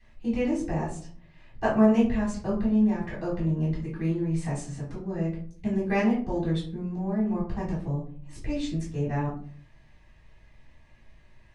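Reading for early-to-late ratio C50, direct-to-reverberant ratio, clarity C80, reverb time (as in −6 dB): 6.0 dB, −8.5 dB, 11.5 dB, 0.50 s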